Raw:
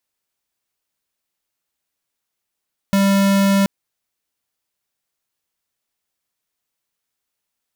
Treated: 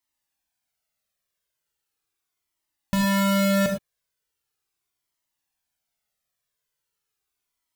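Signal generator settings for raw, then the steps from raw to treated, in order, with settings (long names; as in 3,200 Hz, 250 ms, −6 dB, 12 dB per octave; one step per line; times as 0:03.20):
tone square 197 Hz −14.5 dBFS 0.73 s
reverb whose tail is shaped and stops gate 130 ms flat, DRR 2 dB
flanger whose copies keep moving one way falling 0.39 Hz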